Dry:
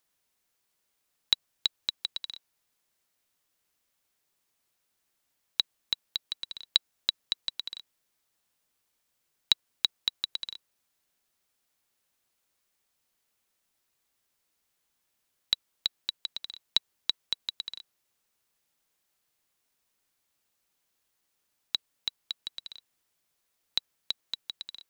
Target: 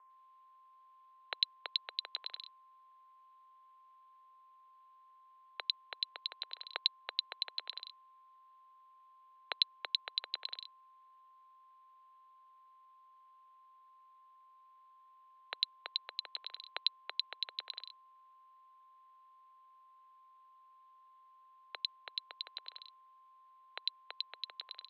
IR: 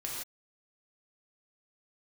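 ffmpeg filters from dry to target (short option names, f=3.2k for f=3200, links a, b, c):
-filter_complex "[0:a]aeval=exprs='val(0)+0.000891*sin(2*PI*930*n/s)':c=same,highpass=f=330:t=q:w=0.5412,highpass=f=330:t=q:w=1.307,lowpass=f=3.5k:t=q:w=0.5176,lowpass=f=3.5k:t=q:w=0.7071,lowpass=f=3.5k:t=q:w=1.932,afreqshift=120,acrossover=split=2600[a][b];[b]adelay=100[c];[a][c]amix=inputs=2:normalize=0,volume=1dB"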